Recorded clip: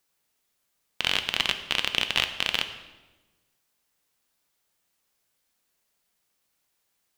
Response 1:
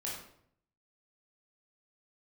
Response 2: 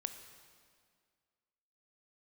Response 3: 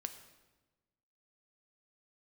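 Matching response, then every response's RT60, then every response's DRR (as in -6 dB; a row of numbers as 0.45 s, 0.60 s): 3; 0.65 s, 2.0 s, 1.2 s; -5.5 dB, 8.0 dB, 7.5 dB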